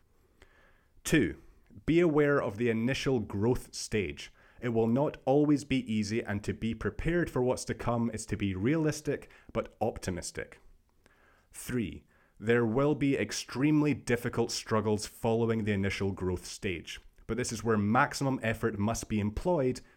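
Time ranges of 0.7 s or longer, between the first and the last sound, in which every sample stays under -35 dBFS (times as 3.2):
10.43–11.58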